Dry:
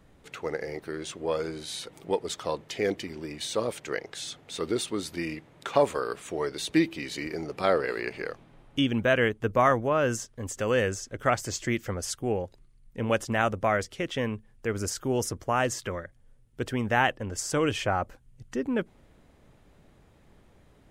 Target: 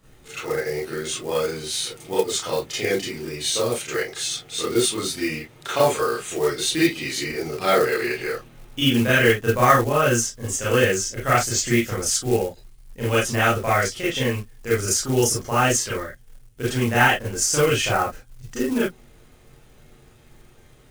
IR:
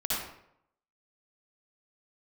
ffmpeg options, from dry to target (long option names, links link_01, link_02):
-filter_complex "[1:a]atrim=start_sample=2205,afade=type=out:start_time=0.22:duration=0.01,atrim=end_sample=10143,asetrate=83790,aresample=44100[link_01];[0:a][link_01]afir=irnorm=-1:irlink=0,acrusher=bits=6:mode=log:mix=0:aa=0.000001,highshelf=frequency=3100:gain=8.5,volume=3.5dB"